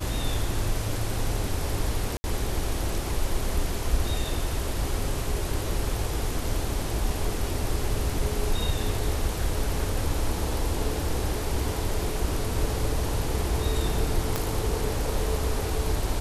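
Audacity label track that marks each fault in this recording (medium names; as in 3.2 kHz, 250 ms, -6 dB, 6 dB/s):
2.170000	2.240000	dropout 70 ms
14.360000	14.360000	pop -11 dBFS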